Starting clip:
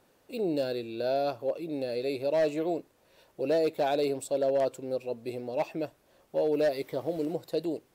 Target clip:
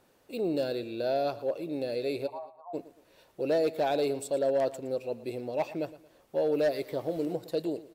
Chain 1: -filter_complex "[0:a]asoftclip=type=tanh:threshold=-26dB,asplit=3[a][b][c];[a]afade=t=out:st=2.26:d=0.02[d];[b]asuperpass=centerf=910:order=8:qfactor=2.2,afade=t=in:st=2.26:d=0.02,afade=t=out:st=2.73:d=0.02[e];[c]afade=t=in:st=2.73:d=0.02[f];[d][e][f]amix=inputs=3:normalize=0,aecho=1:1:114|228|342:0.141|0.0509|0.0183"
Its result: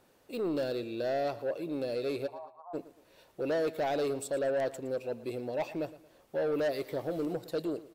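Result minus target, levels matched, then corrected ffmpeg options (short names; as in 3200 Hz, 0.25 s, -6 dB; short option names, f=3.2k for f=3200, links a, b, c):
soft clip: distortion +18 dB
-filter_complex "[0:a]asoftclip=type=tanh:threshold=-14.5dB,asplit=3[a][b][c];[a]afade=t=out:st=2.26:d=0.02[d];[b]asuperpass=centerf=910:order=8:qfactor=2.2,afade=t=in:st=2.26:d=0.02,afade=t=out:st=2.73:d=0.02[e];[c]afade=t=in:st=2.73:d=0.02[f];[d][e][f]amix=inputs=3:normalize=0,aecho=1:1:114|228|342:0.141|0.0509|0.0183"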